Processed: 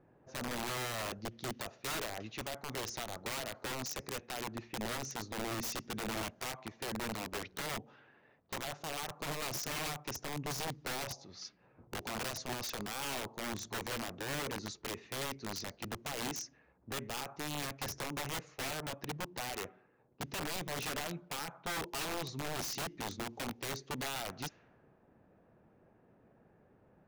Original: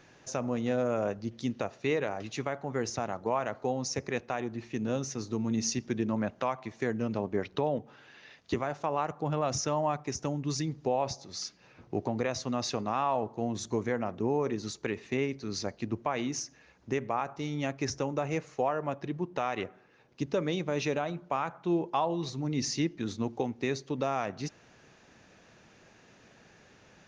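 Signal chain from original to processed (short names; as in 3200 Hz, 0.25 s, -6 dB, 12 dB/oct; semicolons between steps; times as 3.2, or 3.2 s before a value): low-pass opened by the level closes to 740 Hz, open at -30 dBFS; wrapped overs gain 27.5 dB; gain -5 dB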